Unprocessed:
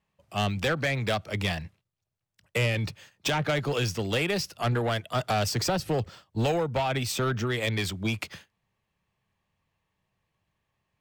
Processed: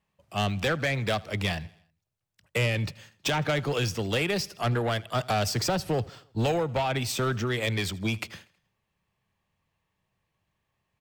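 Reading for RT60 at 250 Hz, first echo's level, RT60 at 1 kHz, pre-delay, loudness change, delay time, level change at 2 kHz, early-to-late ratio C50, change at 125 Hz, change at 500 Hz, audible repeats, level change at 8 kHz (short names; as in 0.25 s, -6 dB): none, -23.0 dB, none, none, 0.0 dB, 80 ms, 0.0 dB, none, 0.0 dB, 0.0 dB, 3, 0.0 dB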